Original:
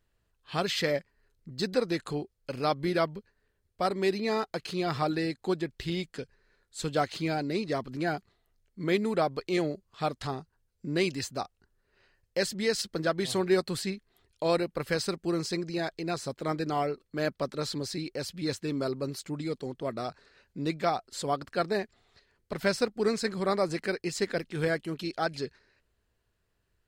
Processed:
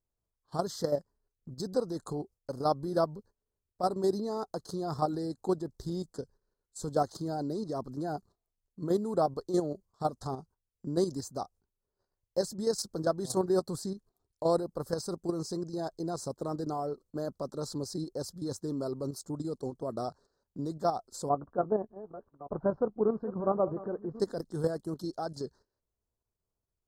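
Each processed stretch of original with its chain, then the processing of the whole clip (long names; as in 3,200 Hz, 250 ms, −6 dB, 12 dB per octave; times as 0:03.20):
0:21.29–0:24.20: delay that plays each chunk backwards 590 ms, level −14 dB + low-pass filter 1,400 Hz 24 dB per octave + double-tracking delay 14 ms −14 dB
whole clip: Chebyshev band-stop filter 1,000–5,800 Hz, order 2; noise gate −54 dBFS, range −11 dB; output level in coarse steps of 9 dB; level +2.5 dB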